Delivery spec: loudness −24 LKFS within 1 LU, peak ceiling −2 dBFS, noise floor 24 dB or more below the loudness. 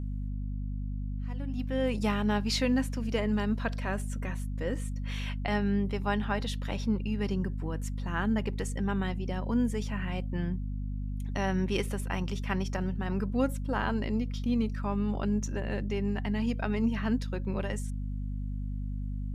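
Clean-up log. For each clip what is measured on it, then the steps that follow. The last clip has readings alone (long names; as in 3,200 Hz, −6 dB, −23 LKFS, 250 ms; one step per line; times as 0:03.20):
mains hum 50 Hz; hum harmonics up to 250 Hz; level of the hum −31 dBFS; integrated loudness −32.0 LKFS; sample peak −15.5 dBFS; target loudness −24.0 LKFS
→ mains-hum notches 50/100/150/200/250 Hz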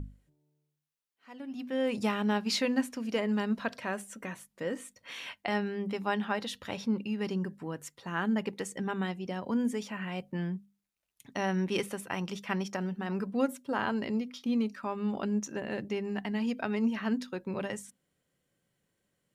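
mains hum none found; integrated loudness −33.5 LKFS; sample peak −17.0 dBFS; target loudness −24.0 LKFS
→ level +9.5 dB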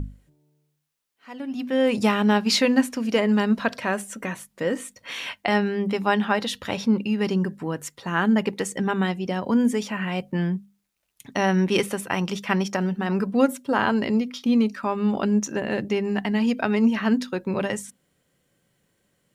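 integrated loudness −24.0 LKFS; sample peak −7.5 dBFS; background noise floor −72 dBFS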